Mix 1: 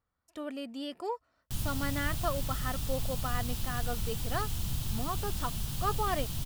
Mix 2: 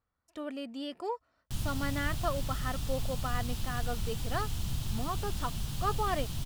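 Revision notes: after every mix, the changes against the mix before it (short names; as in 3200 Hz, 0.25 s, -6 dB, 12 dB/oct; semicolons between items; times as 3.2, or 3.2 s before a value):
master: add high shelf 11000 Hz -9.5 dB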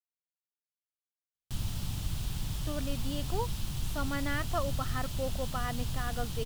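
speech: entry +2.30 s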